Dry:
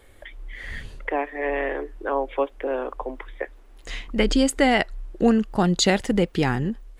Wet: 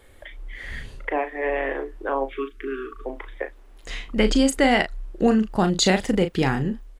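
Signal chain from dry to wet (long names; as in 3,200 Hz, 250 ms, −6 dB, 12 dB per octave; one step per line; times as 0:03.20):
time-frequency box erased 0:02.30–0:03.05, 450–1,100 Hz
double-tracking delay 37 ms −8.5 dB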